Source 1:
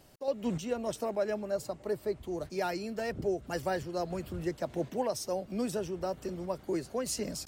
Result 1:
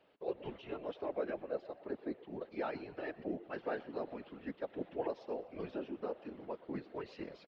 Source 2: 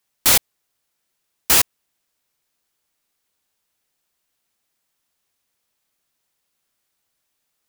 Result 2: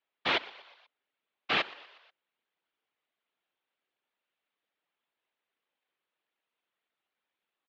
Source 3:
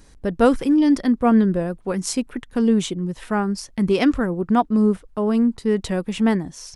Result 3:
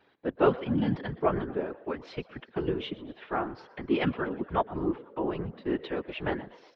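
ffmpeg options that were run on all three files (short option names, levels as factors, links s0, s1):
-filter_complex "[0:a]highpass=f=340:t=q:w=0.5412,highpass=f=340:t=q:w=1.307,lowpass=f=3600:t=q:w=0.5176,lowpass=f=3600:t=q:w=0.7071,lowpass=f=3600:t=q:w=1.932,afreqshift=-81,asplit=5[s0][s1][s2][s3][s4];[s1]adelay=121,afreqshift=68,volume=0.112[s5];[s2]adelay=242,afreqshift=136,volume=0.0603[s6];[s3]adelay=363,afreqshift=204,volume=0.0327[s7];[s4]adelay=484,afreqshift=272,volume=0.0176[s8];[s0][s5][s6][s7][s8]amix=inputs=5:normalize=0,afftfilt=real='hypot(re,im)*cos(2*PI*random(0))':imag='hypot(re,im)*sin(2*PI*random(1))':win_size=512:overlap=0.75"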